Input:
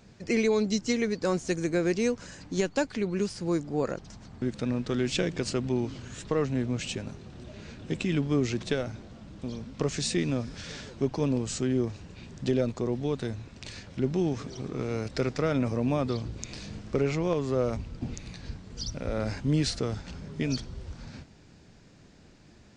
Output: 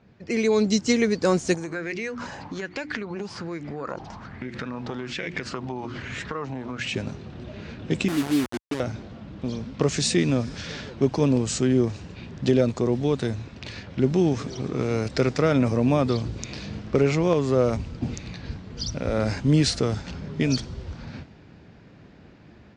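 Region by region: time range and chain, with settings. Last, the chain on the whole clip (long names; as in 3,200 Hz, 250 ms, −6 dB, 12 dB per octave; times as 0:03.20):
0:01.54–0:06.94: mains-hum notches 60/120/180/240/300/360 Hz + downward compressor 8 to 1, threshold −36 dBFS + auto-filter bell 1.2 Hz 810–2,200 Hz +15 dB
0:08.08–0:08.80: formant resonators in series u + bit-depth reduction 6 bits, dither none
whole clip: high-pass filter 55 Hz; low-pass that shuts in the quiet parts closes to 2,500 Hz, open at −27 dBFS; automatic gain control gain up to 8 dB; level −1.5 dB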